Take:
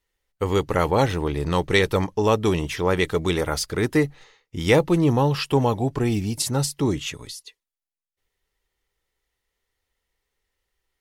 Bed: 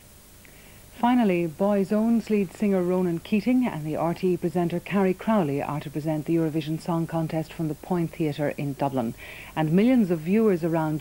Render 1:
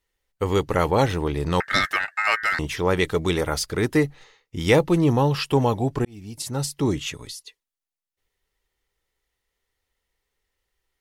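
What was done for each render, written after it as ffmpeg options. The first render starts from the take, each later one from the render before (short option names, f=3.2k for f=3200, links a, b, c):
-filter_complex "[0:a]asettb=1/sr,asplit=3[a][b][c];[a]atrim=end=1.604[d];[b]atrim=start=1.6:end=2.59,asetpts=PTS-STARTPTS,afade=t=in:d=0.004:c=qsin,afade=t=out:st=0.986:d=0.004:c=qsin,aeval=exprs='val(0)*sin(2*PI*1700*n/s)':c=same[e];[c]atrim=start=2.586[f];[d][e]acrossfade=d=0.004:c1=hsin:c2=qsin[g];[g][f]acrossfade=d=0.004:c1=qsin:c2=hsin,asplit=2[h][i];[h]atrim=end=6.05,asetpts=PTS-STARTPTS,afade=t=out:st=6.046:d=0.004:c=hsin[j];[i]atrim=start=6.05,asetpts=PTS-STARTPTS,afade=t=in:d=0.82[k];[j][k]concat=n=2:v=0:a=1"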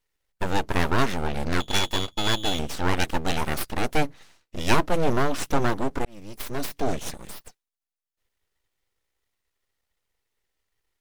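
-af "aeval=exprs='abs(val(0))':c=same"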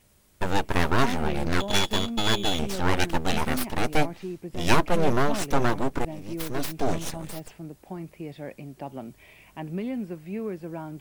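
-filter_complex "[1:a]volume=-11.5dB[a];[0:a][a]amix=inputs=2:normalize=0"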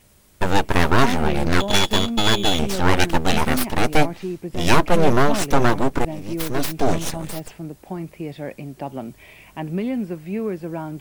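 -af "volume=6.5dB,alimiter=limit=-2dB:level=0:latency=1"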